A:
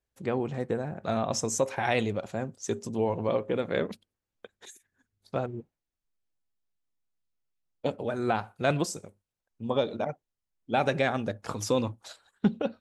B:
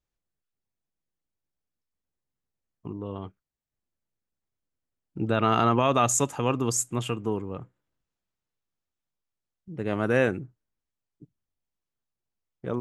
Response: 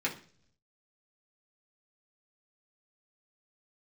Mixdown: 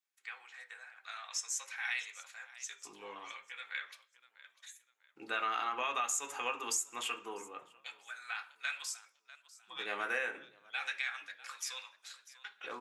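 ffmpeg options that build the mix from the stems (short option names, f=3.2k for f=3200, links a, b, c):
-filter_complex "[0:a]agate=range=-33dB:threshold=-53dB:ratio=3:detection=peak,highpass=f=1.4k:w=0.5412,highpass=f=1.4k:w=1.3066,volume=-8.5dB,asplit=3[a][b][c];[b]volume=-3dB[d];[c]volume=-13dB[e];[1:a]highpass=1.1k,volume=-4.5dB,asplit=3[f][g][h];[g]volume=-4dB[i];[h]volume=-23dB[j];[2:a]atrim=start_sample=2205[k];[d][i]amix=inputs=2:normalize=0[l];[l][k]afir=irnorm=-1:irlink=0[m];[e][j]amix=inputs=2:normalize=0,aecho=0:1:647|1294|1941|2588|3235:1|0.32|0.102|0.0328|0.0105[n];[a][f][m][n]amix=inputs=4:normalize=0,acompressor=threshold=-31dB:ratio=10"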